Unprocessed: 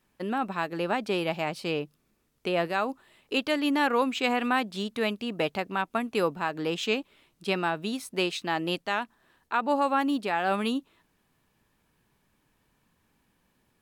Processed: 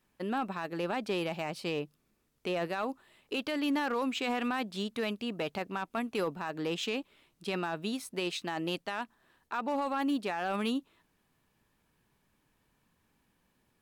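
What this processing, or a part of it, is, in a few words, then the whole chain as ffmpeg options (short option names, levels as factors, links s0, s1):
limiter into clipper: -af "alimiter=limit=0.1:level=0:latency=1:release=12,asoftclip=type=hard:threshold=0.0794,volume=0.708"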